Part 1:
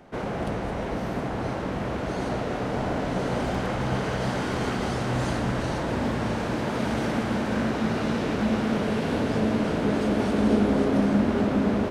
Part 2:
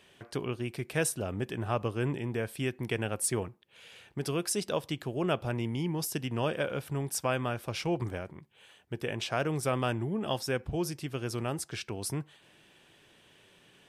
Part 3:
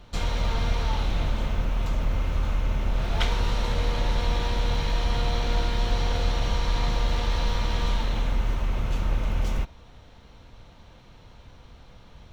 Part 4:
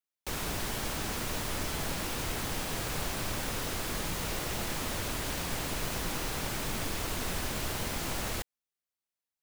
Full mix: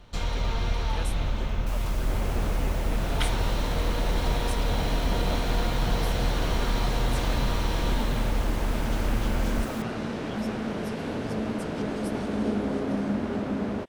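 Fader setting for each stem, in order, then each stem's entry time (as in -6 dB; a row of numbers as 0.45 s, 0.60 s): -6.0 dB, -11.0 dB, -2.0 dB, -8.0 dB; 1.95 s, 0.00 s, 0.00 s, 1.40 s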